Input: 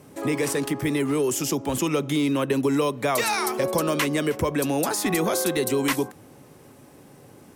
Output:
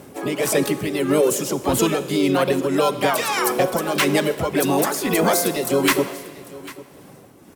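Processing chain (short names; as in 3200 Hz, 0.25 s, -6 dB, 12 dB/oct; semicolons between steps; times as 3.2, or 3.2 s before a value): reverb removal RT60 0.67 s; harmoniser +5 st -4 dB; tremolo 1.7 Hz, depth 56%; on a send: echo 0.797 s -19 dB; on the sum: Schroeder reverb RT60 1.5 s, combs from 33 ms, DRR 12.5 dB; gain +6 dB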